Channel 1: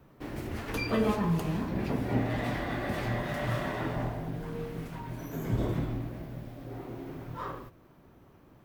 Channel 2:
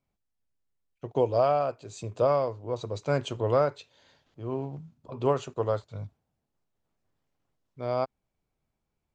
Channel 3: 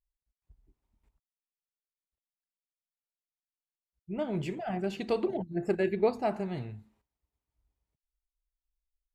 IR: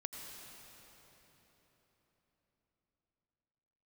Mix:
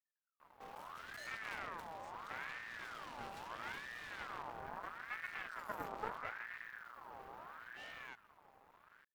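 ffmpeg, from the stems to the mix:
-filter_complex "[0:a]aeval=exprs='(tanh(63.1*val(0)+0.55)-tanh(0.55))/63.1':c=same,adelay=400,volume=1.06[s0];[1:a]adelay=100,volume=0.119[s1];[2:a]lowpass=f=1200:w=0.5412,lowpass=f=1200:w=1.3066,bandreject=f=47.4:t=h:w=4,bandreject=f=94.8:t=h:w=4,bandreject=f=142.2:t=h:w=4,bandreject=f=189.6:t=h:w=4,bandreject=f=237:t=h:w=4,bandreject=f=284.4:t=h:w=4,bandreject=f=331.8:t=h:w=4,bandreject=f=379.2:t=h:w=4,bandreject=f=426.6:t=h:w=4,bandreject=f=474:t=h:w=4,bandreject=f=521.4:t=h:w=4,bandreject=f=568.8:t=h:w=4,bandreject=f=616.2:t=h:w=4,bandreject=f=663.6:t=h:w=4,bandreject=f=711:t=h:w=4,bandreject=f=758.4:t=h:w=4,bandreject=f=805.8:t=h:w=4,bandreject=f=853.2:t=h:w=4,bandreject=f=900.6:t=h:w=4,bandreject=f=948:t=h:w=4,bandreject=f=995.4:t=h:w=4,bandreject=f=1042.8:t=h:w=4,bandreject=f=1090.2:t=h:w=4,bandreject=f=1137.6:t=h:w=4,bandreject=f=1185:t=h:w=4,bandreject=f=1232.4:t=h:w=4,bandreject=f=1279.8:t=h:w=4,bandreject=f=1327.2:t=h:w=4,bandreject=f=1374.6:t=h:w=4,volume=0.299[s2];[s0][s1][s2]amix=inputs=3:normalize=0,aeval=exprs='max(val(0),0)':c=same,aeval=exprs='val(0)*sin(2*PI*1300*n/s+1300*0.4/0.76*sin(2*PI*0.76*n/s))':c=same"

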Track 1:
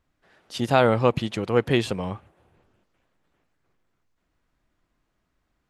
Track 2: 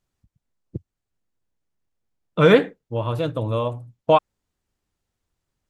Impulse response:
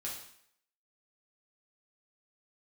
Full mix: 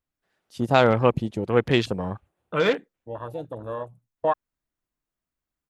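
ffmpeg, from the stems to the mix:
-filter_complex "[0:a]crystalizer=i=1.5:c=0,volume=1.06[s0];[1:a]aemphasis=mode=production:type=bsi,adelay=150,volume=0.501[s1];[s0][s1]amix=inputs=2:normalize=0,afwtdn=0.0251"

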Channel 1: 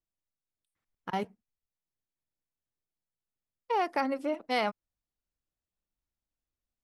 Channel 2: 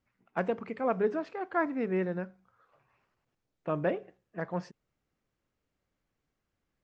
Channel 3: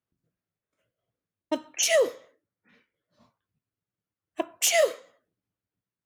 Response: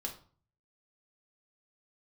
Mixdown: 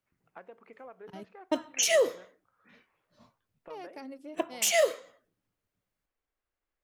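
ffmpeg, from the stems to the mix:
-filter_complex "[0:a]equalizer=f=1200:w=0.8:g=-12.5,volume=0.335[s0];[1:a]bass=f=250:g=-15,treble=f=4000:g=-7,acompressor=threshold=0.00708:ratio=4,asubboost=boost=8.5:cutoff=51,volume=0.596[s1];[2:a]volume=1.26[s2];[s0][s1][s2]amix=inputs=3:normalize=0,alimiter=limit=0.168:level=0:latency=1:release=242"

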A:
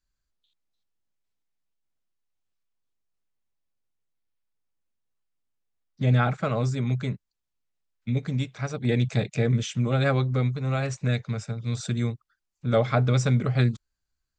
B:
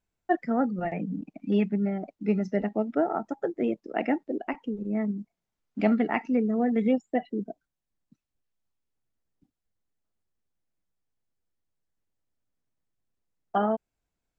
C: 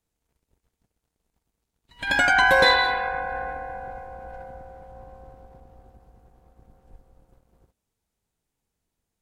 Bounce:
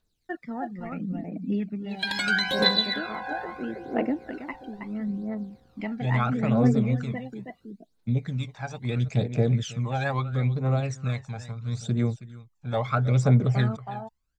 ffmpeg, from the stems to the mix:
-filter_complex "[0:a]equalizer=f=770:t=o:w=1.5:g=7,volume=0.422,asplit=2[s0][s1];[s1]volume=0.188[s2];[1:a]volume=0.562,asplit=2[s3][s4];[s4]volume=0.398[s5];[2:a]highpass=160,equalizer=f=4100:t=o:w=0.66:g=14.5,volume=0.562[s6];[s3][s6]amix=inputs=2:normalize=0,equalizer=f=770:t=o:w=0.77:g=-3.5,acompressor=threshold=0.0355:ratio=2,volume=1[s7];[s2][s5]amix=inputs=2:normalize=0,aecho=0:1:322:1[s8];[s0][s7][s8]amix=inputs=3:normalize=0,aphaser=in_gain=1:out_gain=1:delay=1.3:decay=0.67:speed=0.75:type=triangular"

